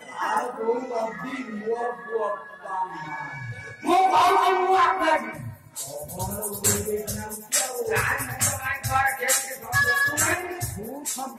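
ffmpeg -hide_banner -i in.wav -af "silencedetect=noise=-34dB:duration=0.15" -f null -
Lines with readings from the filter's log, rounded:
silence_start: 5.54
silence_end: 5.76 | silence_duration: 0.23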